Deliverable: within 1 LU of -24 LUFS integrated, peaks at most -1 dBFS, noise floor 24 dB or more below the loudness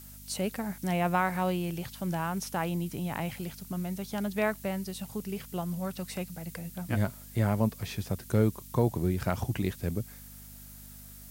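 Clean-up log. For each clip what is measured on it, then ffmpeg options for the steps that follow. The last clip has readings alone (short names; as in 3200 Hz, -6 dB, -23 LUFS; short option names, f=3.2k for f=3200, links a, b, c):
hum 50 Hz; harmonics up to 250 Hz; hum level -48 dBFS; noise floor -48 dBFS; noise floor target -56 dBFS; loudness -32.0 LUFS; peak -12.0 dBFS; loudness target -24.0 LUFS
-> -af "bandreject=f=50:t=h:w=4,bandreject=f=100:t=h:w=4,bandreject=f=150:t=h:w=4,bandreject=f=200:t=h:w=4,bandreject=f=250:t=h:w=4"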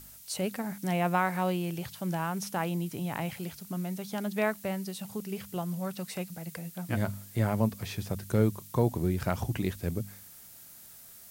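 hum none; noise floor -51 dBFS; noise floor target -57 dBFS
-> -af "afftdn=nr=6:nf=-51"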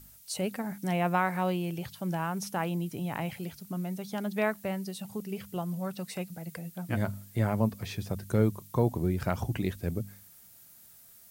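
noise floor -55 dBFS; noise floor target -57 dBFS
-> -af "afftdn=nr=6:nf=-55"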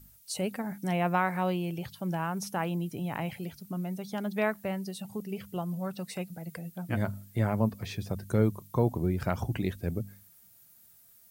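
noise floor -59 dBFS; loudness -32.5 LUFS; peak -12.0 dBFS; loudness target -24.0 LUFS
-> -af "volume=8.5dB"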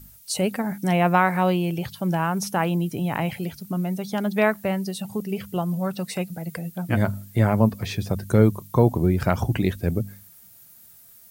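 loudness -24.0 LUFS; peak -3.5 dBFS; noise floor -50 dBFS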